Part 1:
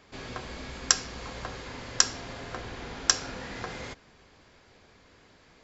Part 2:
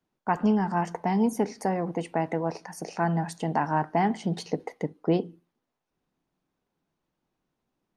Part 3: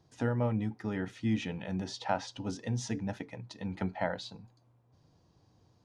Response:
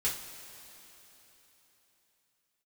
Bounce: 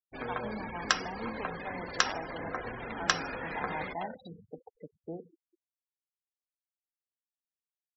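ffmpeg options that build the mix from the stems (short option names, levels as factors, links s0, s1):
-filter_complex "[0:a]acrossover=split=3900[s0][s1];[s1]acompressor=threshold=0.00355:ratio=4:attack=1:release=60[s2];[s0][s2]amix=inputs=2:normalize=0,volume=1.33,asplit=2[s3][s4];[s4]volume=0.211[s5];[1:a]volume=0.211,asplit=2[s6][s7];[s7]volume=0.188[s8];[2:a]acompressor=threshold=0.0178:ratio=8,aeval=exprs='(mod(20*val(0)+1,2)-1)/20':c=same,adynamicsmooth=sensitivity=5.5:basefreq=3300,volume=1,asplit=2[s9][s10];[s10]volume=0.251[s11];[3:a]atrim=start_sample=2205[s12];[s5][s8][s11]amix=inputs=3:normalize=0[s13];[s13][s12]afir=irnorm=-1:irlink=0[s14];[s3][s6][s9][s14]amix=inputs=4:normalize=0,afftfilt=real='re*gte(hypot(re,im),0.02)':imag='im*gte(hypot(re,im),0.02)':win_size=1024:overlap=0.75,lowshelf=f=310:g=-11.5"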